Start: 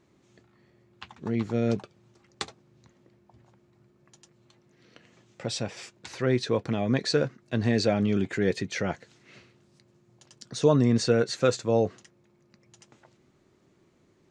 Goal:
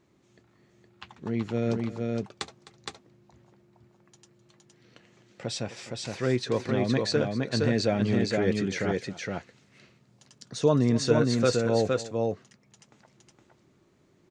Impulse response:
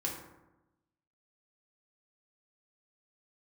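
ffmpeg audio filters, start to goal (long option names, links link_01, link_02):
-af "aecho=1:1:257|465:0.141|0.708,volume=-1.5dB"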